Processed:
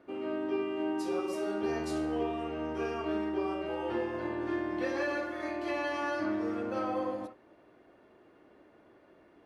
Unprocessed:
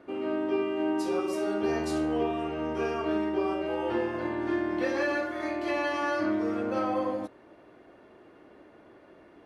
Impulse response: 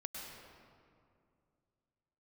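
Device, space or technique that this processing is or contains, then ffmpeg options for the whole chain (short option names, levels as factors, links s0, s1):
keyed gated reverb: -filter_complex "[0:a]asplit=3[s0][s1][s2];[1:a]atrim=start_sample=2205[s3];[s1][s3]afir=irnorm=-1:irlink=0[s4];[s2]apad=whole_len=416988[s5];[s4][s5]sidechaingate=range=0.0224:threshold=0.00891:ratio=16:detection=peak,volume=0.376[s6];[s0][s6]amix=inputs=2:normalize=0,volume=0.501"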